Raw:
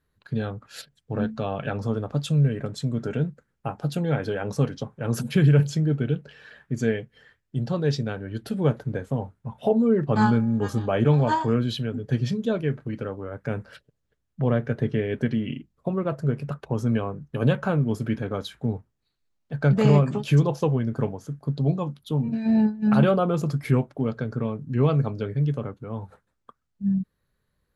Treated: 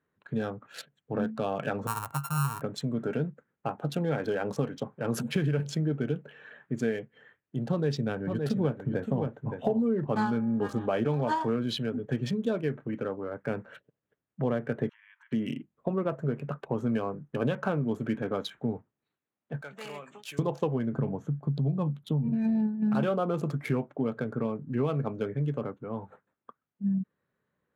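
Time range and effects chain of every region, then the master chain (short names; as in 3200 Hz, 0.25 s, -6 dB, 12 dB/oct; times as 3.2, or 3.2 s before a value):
1.87–2.62 sample sorter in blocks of 32 samples + EQ curve 140 Hz 0 dB, 200 Hz -15 dB, 500 Hz -17 dB, 970 Hz +3 dB, 2400 Hz -13 dB, 5800 Hz -11 dB, 8400 Hz +1 dB
7.7–10.07 low shelf 220 Hz +7 dB + echo 0.568 s -8.5 dB
14.89–15.32 compressor 20:1, threshold -37 dBFS + brick-wall FIR high-pass 880 Hz
19.61–20.39 differentiator + sample leveller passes 1
20.93–22.95 bell 140 Hz +12.5 dB 1.2 oct + compressor 2:1, threshold -22 dBFS
whole clip: Wiener smoothing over 9 samples; HPF 180 Hz 12 dB/oct; compressor 5:1, threshold -24 dBFS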